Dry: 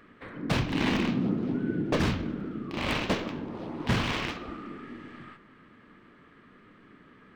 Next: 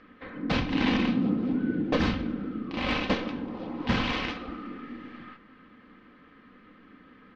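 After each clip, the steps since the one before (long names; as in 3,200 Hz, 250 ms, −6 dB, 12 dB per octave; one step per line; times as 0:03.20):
low-pass filter 5,200 Hz 24 dB per octave
comb filter 3.9 ms, depth 50%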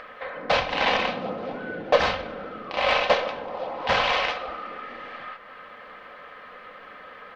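low shelf with overshoot 410 Hz −13 dB, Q 3
in parallel at −1 dB: upward compression, threshold −35 dBFS
on the sum: level +1 dB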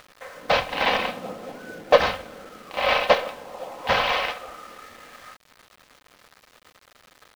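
centre clipping without the shift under −38 dBFS
expander for the loud parts 1.5 to 1, over −34 dBFS
level +4.5 dB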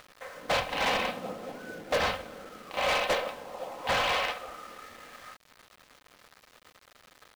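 gain into a clipping stage and back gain 20 dB
level −3 dB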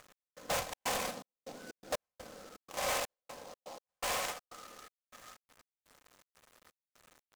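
gate pattern "x..xxx.xxx..xx." 123 BPM −60 dB
short delay modulated by noise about 4,500 Hz, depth 0.071 ms
level −6.5 dB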